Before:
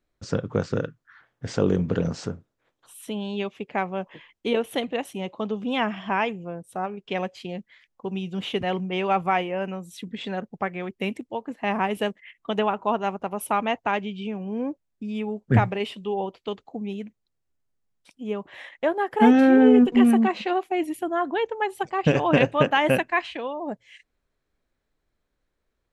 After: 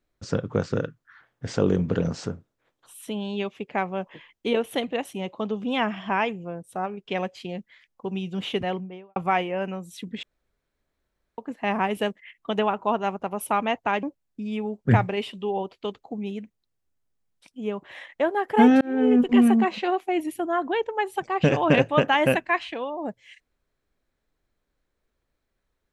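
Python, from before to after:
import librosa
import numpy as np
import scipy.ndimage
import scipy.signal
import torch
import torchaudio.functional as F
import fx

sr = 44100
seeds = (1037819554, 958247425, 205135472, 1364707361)

y = fx.studio_fade_out(x, sr, start_s=8.54, length_s=0.62)
y = fx.edit(y, sr, fx.room_tone_fill(start_s=10.23, length_s=1.15),
    fx.cut(start_s=14.03, length_s=0.63),
    fx.fade_in_span(start_s=19.44, length_s=0.65, curve='qsin'), tone=tone)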